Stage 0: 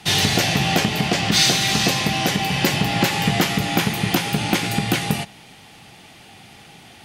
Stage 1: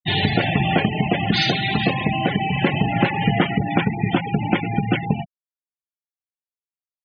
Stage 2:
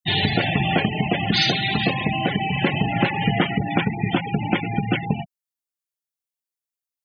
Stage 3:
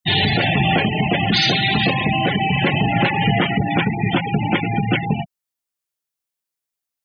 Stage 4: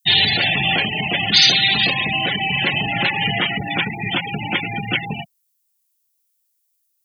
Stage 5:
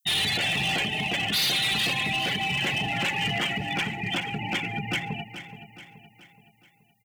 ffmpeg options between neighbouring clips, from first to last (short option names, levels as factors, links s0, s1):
-af "lowpass=3200,afftfilt=real='re*gte(hypot(re,im),0.112)':imag='im*gte(hypot(re,im),0.112)':win_size=1024:overlap=0.75,volume=1.19"
-af "highshelf=f=4600:g=9,volume=0.794"
-af "alimiter=limit=0.237:level=0:latency=1:release=15,volume=1.78"
-af "crystalizer=i=9:c=0,volume=0.398"
-filter_complex "[0:a]asoftclip=type=hard:threshold=0.15,asplit=2[s0][s1];[s1]aecho=0:1:425|850|1275|1700|2125:0.251|0.121|0.0579|0.0278|0.0133[s2];[s0][s2]amix=inputs=2:normalize=0,volume=0.501"